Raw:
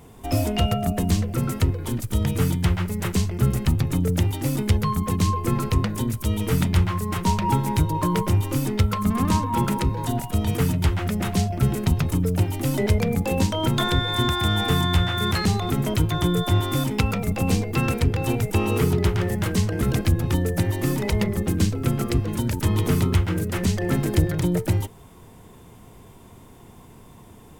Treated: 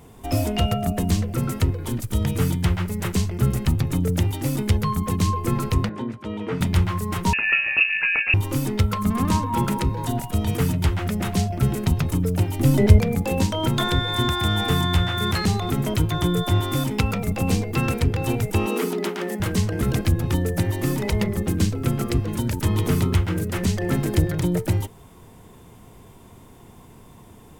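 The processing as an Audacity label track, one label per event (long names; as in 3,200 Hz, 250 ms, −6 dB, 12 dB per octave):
5.890000	6.610000	band-pass filter 210–2,200 Hz
7.330000	8.340000	voice inversion scrambler carrier 2,700 Hz
12.590000	13.000000	low-shelf EQ 330 Hz +9 dB
18.660000	19.400000	Butterworth high-pass 190 Hz 72 dB per octave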